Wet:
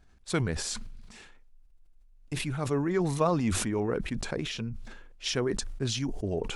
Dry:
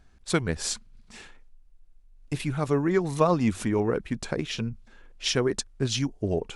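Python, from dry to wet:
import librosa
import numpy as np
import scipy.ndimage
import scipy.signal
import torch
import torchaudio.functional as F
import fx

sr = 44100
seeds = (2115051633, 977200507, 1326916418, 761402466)

y = fx.sustainer(x, sr, db_per_s=40.0)
y = F.gain(torch.from_numpy(y), -5.0).numpy()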